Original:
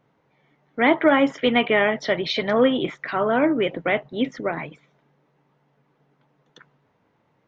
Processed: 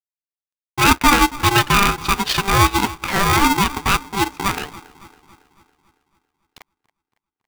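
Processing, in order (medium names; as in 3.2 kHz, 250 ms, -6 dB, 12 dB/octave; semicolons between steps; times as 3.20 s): de-hum 263.9 Hz, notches 2; in parallel at 0 dB: compression, threshold -30 dBFS, peak gain reduction 17 dB; on the sum: transient shaper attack -2 dB, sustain -8 dB; crossover distortion -45.5 dBFS; on a send: feedback echo behind a low-pass 278 ms, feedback 53%, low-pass 1.3 kHz, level -18 dB; on the sum: polarity switched at an audio rate 590 Hz; trim +3.5 dB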